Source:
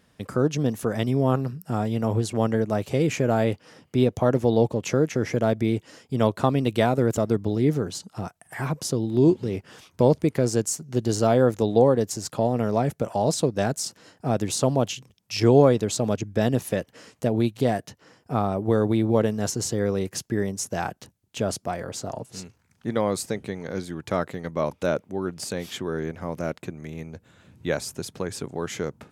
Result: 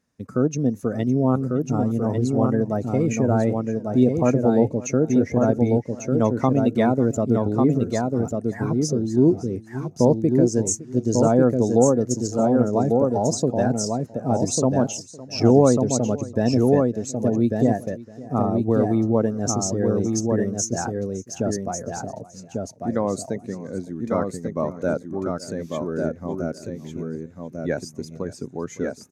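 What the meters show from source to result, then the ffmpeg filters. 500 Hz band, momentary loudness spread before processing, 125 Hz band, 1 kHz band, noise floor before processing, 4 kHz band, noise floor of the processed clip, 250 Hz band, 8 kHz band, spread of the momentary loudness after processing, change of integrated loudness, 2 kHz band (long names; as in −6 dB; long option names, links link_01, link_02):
+2.0 dB, 12 LU, +2.0 dB, +1.0 dB, −65 dBFS, −3.0 dB, −44 dBFS, +5.0 dB, +3.5 dB, 13 LU, +3.0 dB, −3.0 dB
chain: -filter_complex "[0:a]asplit=2[link_01][link_02];[link_02]aecho=0:1:1146:0.668[link_03];[link_01][link_03]amix=inputs=2:normalize=0,afftdn=noise_reduction=14:noise_floor=-29,equalizer=frequency=250:width_type=o:width=0.33:gain=6,equalizer=frequency=3150:width_type=o:width=0.33:gain=-8,equalizer=frequency=6300:width_type=o:width=0.33:gain=10,asplit=2[link_04][link_05];[link_05]aecho=0:1:560:0.106[link_06];[link_04][link_06]amix=inputs=2:normalize=0"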